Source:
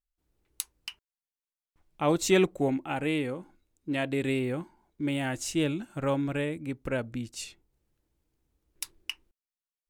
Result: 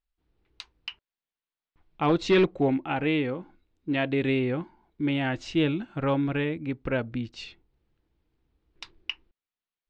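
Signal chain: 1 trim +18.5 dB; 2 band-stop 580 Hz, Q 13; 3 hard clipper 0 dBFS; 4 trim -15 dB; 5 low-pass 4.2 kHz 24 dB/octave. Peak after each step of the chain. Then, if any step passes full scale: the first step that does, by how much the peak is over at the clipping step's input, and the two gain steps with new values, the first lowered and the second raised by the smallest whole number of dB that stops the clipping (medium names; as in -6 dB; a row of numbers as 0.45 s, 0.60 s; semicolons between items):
+7.5 dBFS, +8.0 dBFS, 0.0 dBFS, -15.0 dBFS, -14.0 dBFS; step 1, 8.0 dB; step 1 +10.5 dB, step 4 -7 dB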